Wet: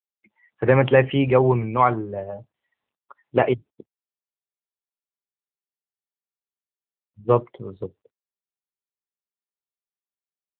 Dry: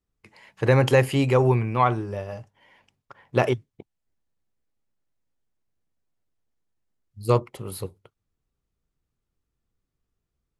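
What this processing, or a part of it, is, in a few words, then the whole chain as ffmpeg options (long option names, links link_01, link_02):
mobile call with aggressive noise cancelling: -af "highpass=frequency=170:poles=1,afftdn=noise_reduction=28:noise_floor=-40,volume=4dB" -ar 8000 -c:a libopencore_amrnb -b:a 7950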